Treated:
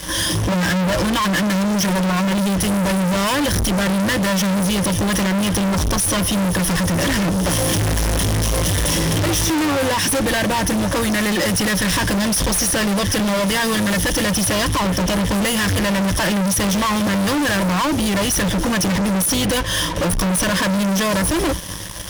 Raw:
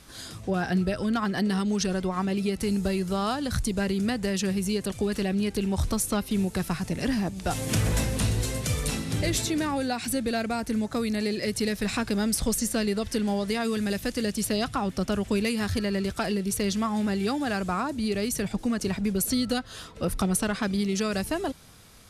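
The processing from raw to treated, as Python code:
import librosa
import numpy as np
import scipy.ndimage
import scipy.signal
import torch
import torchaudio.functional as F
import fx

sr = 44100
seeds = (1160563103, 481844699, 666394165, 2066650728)

y = fx.ripple_eq(x, sr, per_octave=1.2, db=18)
y = fx.fuzz(y, sr, gain_db=42.0, gate_db=-49.0)
y = y * 10.0 ** (-4.0 / 20.0)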